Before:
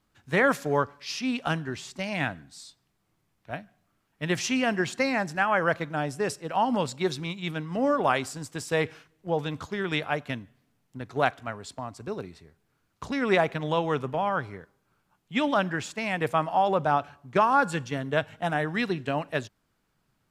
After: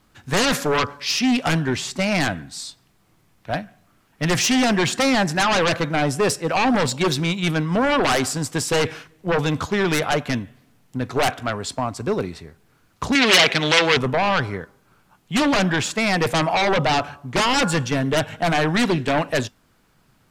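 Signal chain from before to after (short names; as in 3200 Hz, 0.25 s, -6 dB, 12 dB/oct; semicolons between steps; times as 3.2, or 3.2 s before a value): resonator 250 Hz, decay 0.18 s, mix 30%; in parallel at -4 dB: sine folder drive 17 dB, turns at -10 dBFS; 13.15–13.97 on the sum: weighting filter D; gain -2.5 dB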